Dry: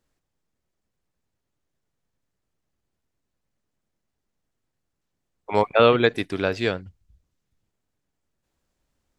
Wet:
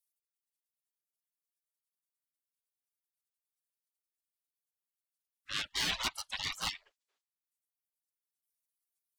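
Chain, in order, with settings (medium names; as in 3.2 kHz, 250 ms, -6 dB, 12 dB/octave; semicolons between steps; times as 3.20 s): overdrive pedal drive 28 dB, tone 1.5 kHz, clips at -3 dBFS; spectral gate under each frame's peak -30 dB weak; reverb removal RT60 1.2 s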